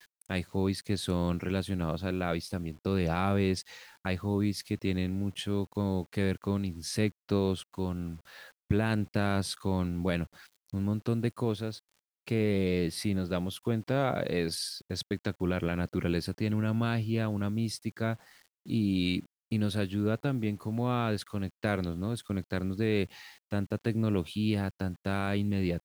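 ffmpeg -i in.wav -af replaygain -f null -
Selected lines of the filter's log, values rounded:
track_gain = +13.1 dB
track_peak = 0.154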